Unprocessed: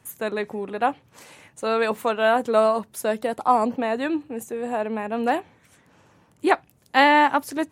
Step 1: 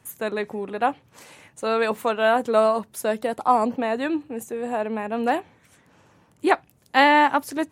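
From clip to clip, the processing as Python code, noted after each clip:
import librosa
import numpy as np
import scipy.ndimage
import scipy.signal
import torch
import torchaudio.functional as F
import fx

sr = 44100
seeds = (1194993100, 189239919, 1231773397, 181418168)

y = x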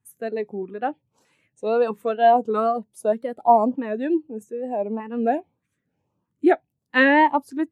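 y = fx.wow_flutter(x, sr, seeds[0], rate_hz=2.1, depth_cents=100.0)
y = fx.filter_lfo_notch(y, sr, shape='saw_up', hz=1.6, low_hz=580.0, high_hz=2200.0, q=1.6)
y = fx.spectral_expand(y, sr, expansion=1.5)
y = y * librosa.db_to_amplitude(1.5)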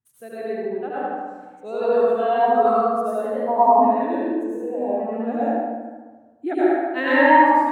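y = scipy.signal.medfilt(x, 3)
y = fx.echo_feedback(y, sr, ms=75, feedback_pct=49, wet_db=-4.0)
y = fx.rev_plate(y, sr, seeds[1], rt60_s=1.4, hf_ratio=0.4, predelay_ms=80, drr_db=-9.5)
y = y * librosa.db_to_amplitude(-10.5)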